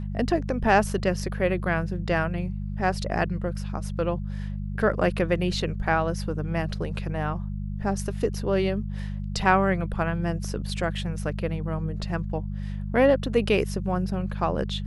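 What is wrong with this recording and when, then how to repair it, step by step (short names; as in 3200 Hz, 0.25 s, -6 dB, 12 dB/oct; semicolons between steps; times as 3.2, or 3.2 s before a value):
hum 50 Hz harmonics 4 -31 dBFS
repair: de-hum 50 Hz, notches 4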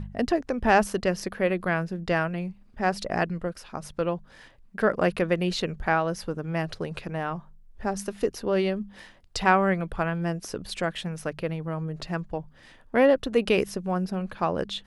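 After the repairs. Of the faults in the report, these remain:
none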